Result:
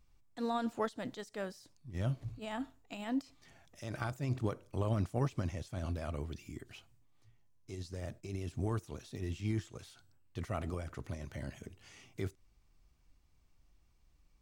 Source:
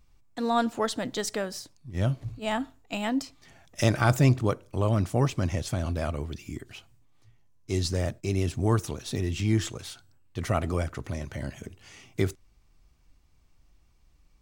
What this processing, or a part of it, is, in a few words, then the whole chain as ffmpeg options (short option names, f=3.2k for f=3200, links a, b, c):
de-esser from a sidechain: -filter_complex "[0:a]asplit=2[a][b];[b]highpass=f=6.2k:w=0.5412,highpass=f=6.2k:w=1.3066,apad=whole_len=635535[c];[a][c]sidechaincompress=threshold=-52dB:ratio=4:attack=0.83:release=73,volume=-6.5dB"